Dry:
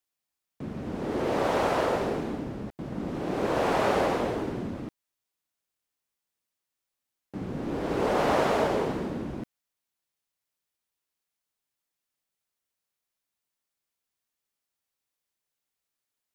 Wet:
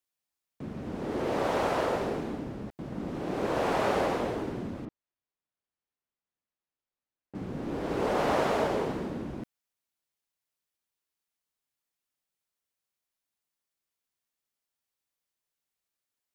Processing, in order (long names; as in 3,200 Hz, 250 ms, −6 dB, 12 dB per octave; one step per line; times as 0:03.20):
0:04.85–0:07.35: head-to-tape spacing loss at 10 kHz 23 dB
level −2.5 dB